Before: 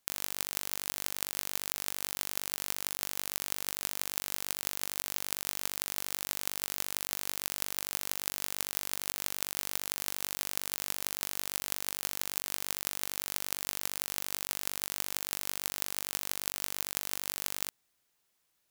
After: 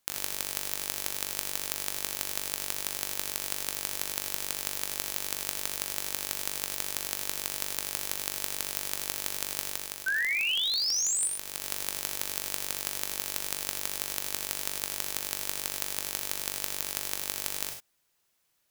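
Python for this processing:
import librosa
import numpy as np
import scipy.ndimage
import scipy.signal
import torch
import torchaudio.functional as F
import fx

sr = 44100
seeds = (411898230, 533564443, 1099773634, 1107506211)

y = fx.spec_paint(x, sr, seeds[0], shape='rise', start_s=10.06, length_s=1.22, low_hz=1500.0, high_hz=9600.0, level_db=-21.0)
y = fx.rev_gated(y, sr, seeds[1], gate_ms=120, shape='rising', drr_db=5.5)
y = fx.rider(y, sr, range_db=5, speed_s=0.5)
y = y * librosa.db_to_amplitude(-3.5)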